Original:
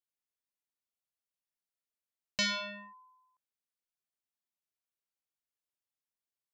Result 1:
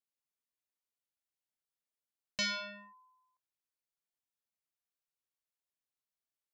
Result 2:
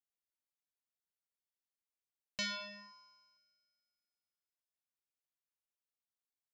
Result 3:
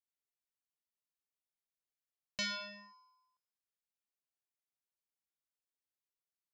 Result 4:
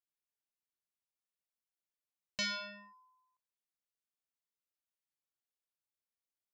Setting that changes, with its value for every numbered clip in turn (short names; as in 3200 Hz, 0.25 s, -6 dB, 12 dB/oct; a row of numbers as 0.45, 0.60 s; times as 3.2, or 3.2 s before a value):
resonator, decay: 0.18, 2.1, 0.96, 0.44 s